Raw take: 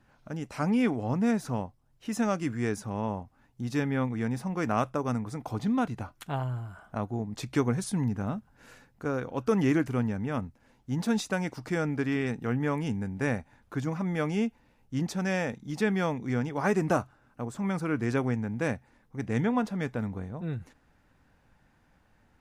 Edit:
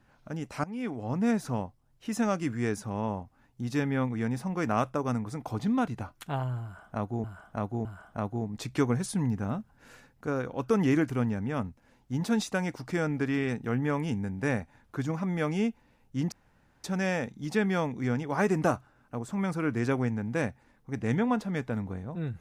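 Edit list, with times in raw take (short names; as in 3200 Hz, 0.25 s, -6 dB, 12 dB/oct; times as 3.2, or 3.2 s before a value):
0.64–1.3 fade in, from -19 dB
6.63–7.24 loop, 3 plays
15.1 insert room tone 0.52 s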